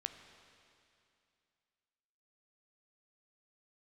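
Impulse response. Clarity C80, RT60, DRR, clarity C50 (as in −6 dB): 9.0 dB, 2.6 s, 7.5 dB, 8.5 dB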